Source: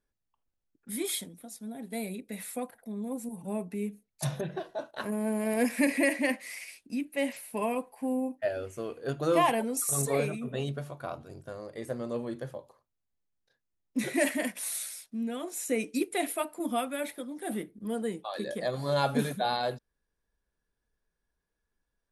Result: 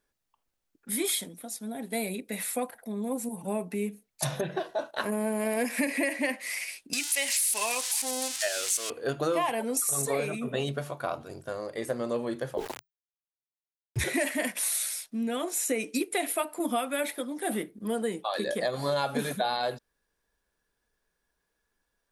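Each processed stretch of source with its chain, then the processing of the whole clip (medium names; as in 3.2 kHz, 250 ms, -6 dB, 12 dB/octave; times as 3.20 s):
6.93–8.90 s: zero-crossing glitches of -29.5 dBFS + frequency weighting ITU-R 468
12.57–14.04 s: small samples zeroed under -58.5 dBFS + frequency shift -140 Hz + level flattener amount 50%
whole clip: bass shelf 250 Hz -9.5 dB; compression 6:1, threshold -33 dBFS; trim +8 dB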